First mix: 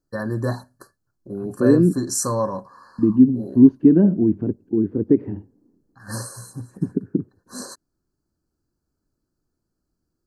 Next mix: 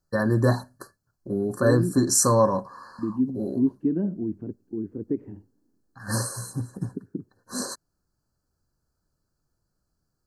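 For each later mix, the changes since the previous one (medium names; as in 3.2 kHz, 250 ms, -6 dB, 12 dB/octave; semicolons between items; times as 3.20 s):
first voice +3.5 dB; second voice -11.5 dB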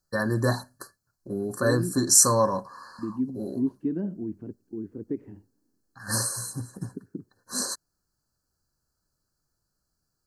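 master: add tilt shelf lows -4.5 dB, about 1.4 kHz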